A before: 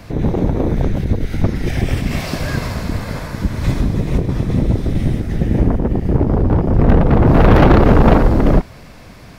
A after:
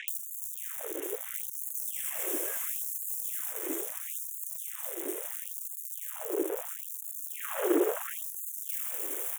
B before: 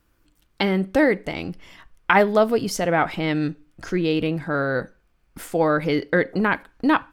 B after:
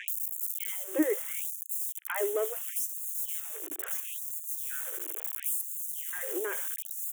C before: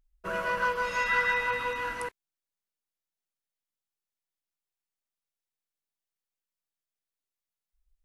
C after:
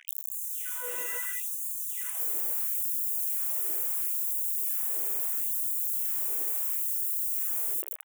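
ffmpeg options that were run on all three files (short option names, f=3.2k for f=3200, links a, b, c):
-filter_complex "[0:a]aeval=exprs='val(0)+0.5*0.0708*sgn(val(0))':c=same,equalizer=f=760:t=o:w=1.2:g=-12.5,acrossover=split=150[a][b];[a]alimiter=limit=-11.5dB:level=0:latency=1[c];[c][b]amix=inputs=2:normalize=0,highshelf=f=9.4k:g=11.5,aexciter=amount=3:drive=6.5:freq=3.3k,asoftclip=type=tanh:threshold=-10dB,acrossover=split=3100[d][e];[e]adelay=80[f];[d][f]amix=inputs=2:normalize=0,acrossover=split=490[g][h];[h]acompressor=threshold=-37dB:ratio=2.5[i];[g][i]amix=inputs=2:normalize=0,asuperstop=centerf=4500:order=4:qfactor=1.2,afftfilt=real='re*gte(b*sr/1024,300*pow(6400/300,0.5+0.5*sin(2*PI*0.74*pts/sr)))':imag='im*gte(b*sr/1024,300*pow(6400/300,0.5+0.5*sin(2*PI*0.74*pts/sr)))':win_size=1024:overlap=0.75"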